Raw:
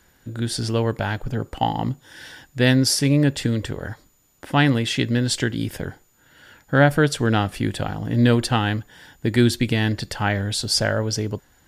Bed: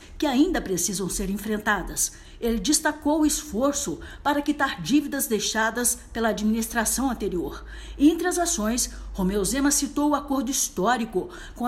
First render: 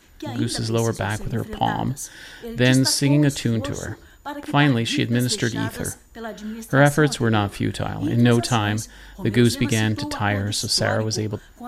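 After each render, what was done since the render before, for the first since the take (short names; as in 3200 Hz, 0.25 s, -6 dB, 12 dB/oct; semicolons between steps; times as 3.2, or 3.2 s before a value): add bed -9 dB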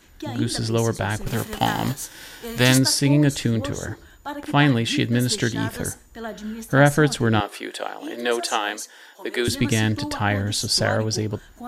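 1.26–2.77 spectral whitening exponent 0.6; 7.4–9.48 HPF 380 Hz 24 dB/oct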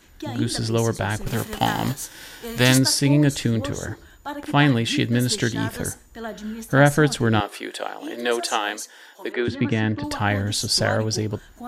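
9.32–10.04 BPF 100–2300 Hz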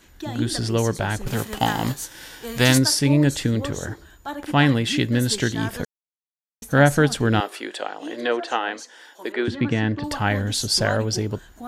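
5.85–6.62 mute; 7.5–9.26 treble ducked by the level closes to 2600 Hz, closed at -20.5 dBFS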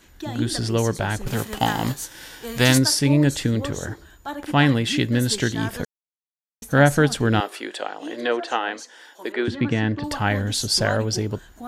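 nothing audible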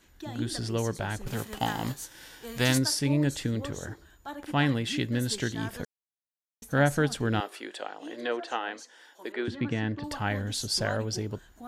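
gain -8 dB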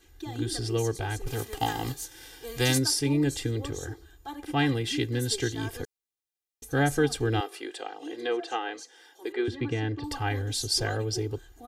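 bell 1300 Hz -5 dB 1.8 oct; comb 2.5 ms, depth 95%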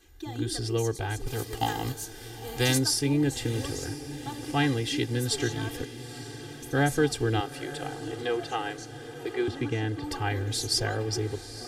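diffused feedback echo 0.907 s, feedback 62%, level -13.5 dB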